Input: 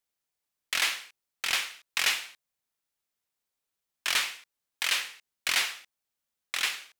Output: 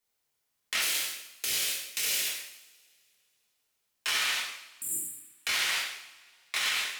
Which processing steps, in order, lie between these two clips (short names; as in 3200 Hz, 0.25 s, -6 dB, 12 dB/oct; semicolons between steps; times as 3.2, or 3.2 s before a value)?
0.8–2.26 EQ curve 550 Hz 0 dB, 900 Hz -16 dB, 16000 Hz +10 dB; 4.55–5.27 spectral delete 380–7100 Hz; two-slope reverb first 0.76 s, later 2.6 s, from -28 dB, DRR -5.5 dB; limiter -19 dBFS, peak gain reduction 11.5 dB